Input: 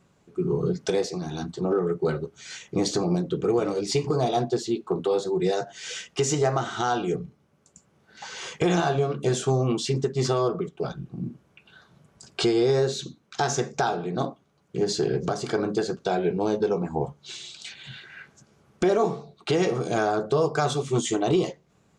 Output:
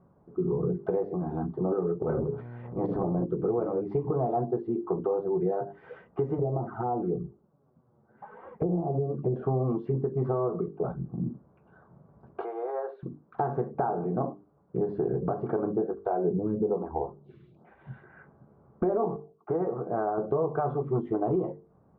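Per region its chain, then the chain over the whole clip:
2–3.24 notches 60/120/180/240/300/360/420/480 Hz + transient shaper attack -10 dB, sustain +12 dB + buzz 120 Hz, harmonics 9, -44 dBFS -8 dB/oct
6.38–9.36 envelope flanger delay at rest 9 ms, full sweep at -21.5 dBFS + treble ducked by the level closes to 520 Hz, closed at -20 dBFS + air absorption 240 m
12.41–13.03 HPF 630 Hz 24 dB/oct + air absorption 120 m
15.78–17.81 low shelf 330 Hz +7 dB + photocell phaser 1.1 Hz
19.16–20.18 LPF 1800 Hz 24 dB/oct + tilt +2 dB/oct + upward expander, over -45 dBFS
whole clip: LPF 1100 Hz 24 dB/oct; notches 50/100/150/200/250/300/350/400/450 Hz; compressor 2.5:1, threshold -29 dBFS; gain +2.5 dB

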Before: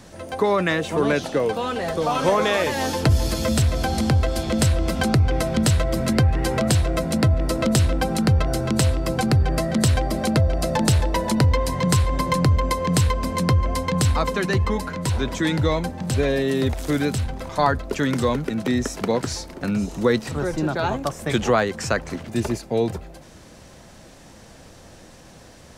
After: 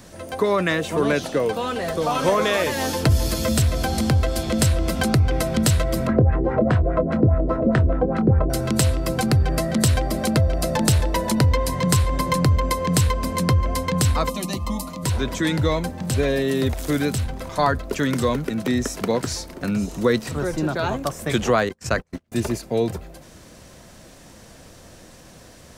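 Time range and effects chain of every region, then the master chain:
6.07–8.5 LFO low-pass sine 4.9 Hz 360–1700 Hz + doubler 26 ms -12 dB
14.29–15.02 high shelf 8300 Hz +8 dB + whine 1200 Hz -38 dBFS + fixed phaser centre 420 Hz, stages 6
21.69–22.32 notches 50/100/150/200/250/300/350/400/450/500 Hz + gate -29 dBFS, range -37 dB + low shelf 76 Hz +9.5 dB
whole clip: high shelf 12000 Hz +10 dB; notch 830 Hz, Q 14

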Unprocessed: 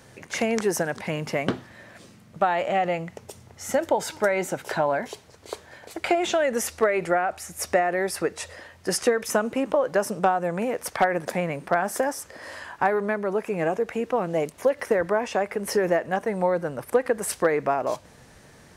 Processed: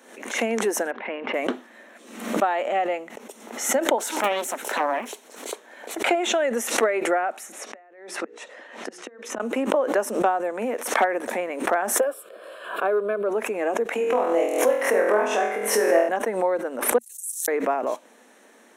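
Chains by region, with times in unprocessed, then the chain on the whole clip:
0.91–1.34 LPF 2900 Hz 24 dB/oct + low shelf 180 Hz -10 dB
3.98–5.53 high shelf 6400 Hz +10.5 dB + Doppler distortion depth 0.91 ms
7.52–9.4 LPF 5600 Hz + notches 60/120/180/240/300/360/420/480 Hz + flipped gate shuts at -18 dBFS, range -29 dB
12–13.29 low shelf 440 Hz +9.5 dB + fixed phaser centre 1300 Hz, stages 8
13.95–16.09 HPF 380 Hz 6 dB/oct + flutter echo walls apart 4.1 m, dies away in 0.71 s + backwards sustainer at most 57 dB/s
16.98–17.48 inverse Chebyshev band-stop 110–1400 Hz, stop band 80 dB + core saturation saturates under 3400 Hz
whole clip: elliptic high-pass 230 Hz, stop band 40 dB; bell 4800 Hz -15 dB 0.22 oct; backwards sustainer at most 79 dB/s

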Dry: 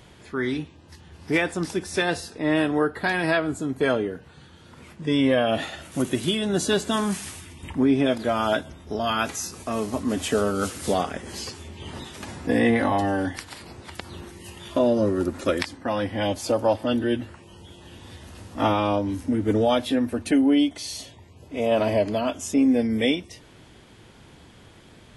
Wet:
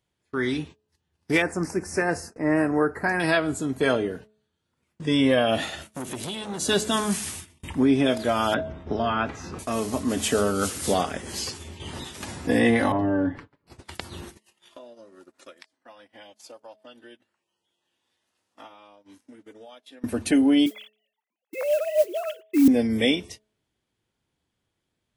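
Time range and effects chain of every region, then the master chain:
1.42–3.2 Butterworth band-stop 3400 Hz, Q 1 + high shelf 8500 Hz -10.5 dB
5.87–6.69 compressor 4:1, threshold -26 dBFS + core saturation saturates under 1000 Hz
8.54–9.59 LPF 1900 Hz + low shelf 170 Hz +3.5 dB + three-band squash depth 70%
12.92–13.67 LPF 1100 Hz + bell 740 Hz -8.5 dB 0.37 oct + comb 7 ms, depth 56%
14.37–20.04 weighting filter A + compressor 12:1, threshold -38 dBFS
20.66–22.68 sine-wave speech + modulation noise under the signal 26 dB + mismatched tape noise reduction encoder only
whole clip: gate -40 dBFS, range -30 dB; high shelf 4200 Hz +6 dB; de-hum 214.1 Hz, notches 3

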